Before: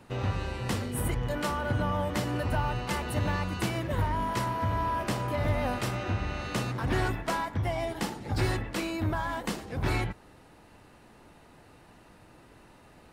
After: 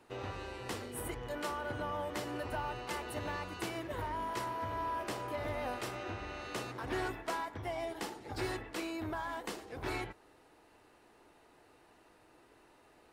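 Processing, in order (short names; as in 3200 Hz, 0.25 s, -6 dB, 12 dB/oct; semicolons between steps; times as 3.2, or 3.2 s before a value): resonant low shelf 260 Hz -8 dB, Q 1.5; notch 550 Hz, Q 17; gain -7 dB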